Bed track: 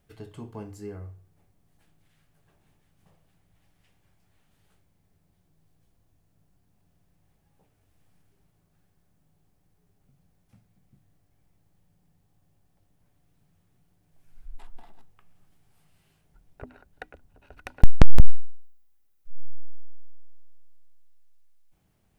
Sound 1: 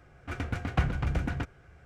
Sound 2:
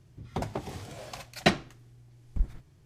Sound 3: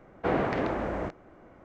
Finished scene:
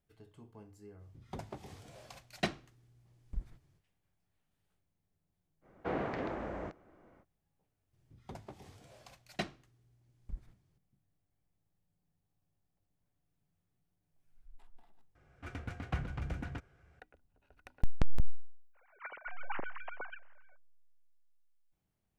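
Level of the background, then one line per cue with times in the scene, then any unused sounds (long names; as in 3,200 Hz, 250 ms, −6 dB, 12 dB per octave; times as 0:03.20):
bed track −15 dB
0:00.97: mix in 2 −11 dB, fades 0.05 s
0:05.61: mix in 3 −9 dB, fades 0.05 s
0:07.93: mix in 2 −15 dB
0:15.15: overwrite with 1 −9.5 dB
0:18.73: mix in 1 −15.5 dB, fades 0.05 s + three sine waves on the formant tracks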